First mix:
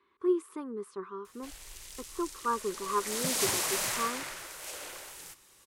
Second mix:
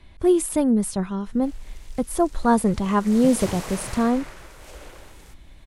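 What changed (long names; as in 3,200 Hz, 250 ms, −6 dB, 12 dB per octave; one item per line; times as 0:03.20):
speech: remove pair of resonant band-passes 670 Hz, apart 1.5 octaves
master: add spectral tilt −3 dB per octave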